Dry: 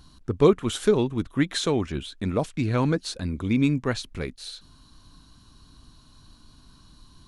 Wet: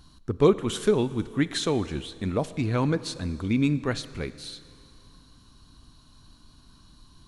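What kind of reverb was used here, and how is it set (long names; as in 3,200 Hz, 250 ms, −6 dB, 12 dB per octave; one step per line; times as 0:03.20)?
four-comb reverb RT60 2.5 s, combs from 27 ms, DRR 15.5 dB
level −1.5 dB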